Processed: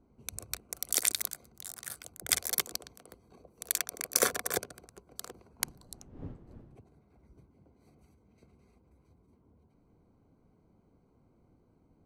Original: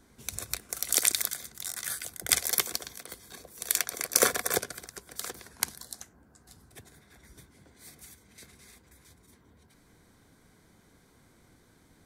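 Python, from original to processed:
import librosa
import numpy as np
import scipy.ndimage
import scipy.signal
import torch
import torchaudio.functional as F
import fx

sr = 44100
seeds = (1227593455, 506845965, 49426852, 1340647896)

y = fx.wiener(x, sr, points=25)
y = fx.dmg_wind(y, sr, seeds[0], corner_hz=220.0, level_db=-39.0, at=(5.59, 6.79), fade=0.02)
y = y * librosa.db_to_amplitude(-3.5)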